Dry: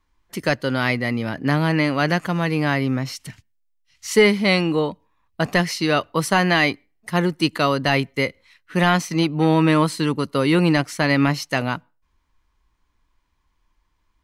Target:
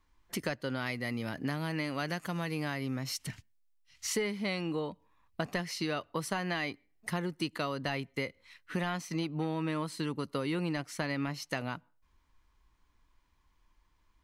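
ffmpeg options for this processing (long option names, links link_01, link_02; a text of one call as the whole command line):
ffmpeg -i in.wav -filter_complex "[0:a]asettb=1/sr,asplit=3[link_01][link_02][link_03];[link_01]atrim=end=0.864[link_04];[link_02]atrim=start=0.86:end=3.17,asetpts=PTS-STARTPTS,afade=type=in:duration=0.004:curve=qsin,afade=type=out:start_time=2.306:duration=0.004:curve=qsin,aemphasis=mode=production:type=cd[link_05];[link_03]atrim=start=3.166[link_06];[link_04][link_05]acrossfade=duration=0.004:curve1=hsin:curve2=qsin[link_07];[link_07][link_06]acrossfade=duration=0.004:curve1=qsin:curve2=hsin,acompressor=threshold=-31dB:ratio=4,volume=-2dB" out.wav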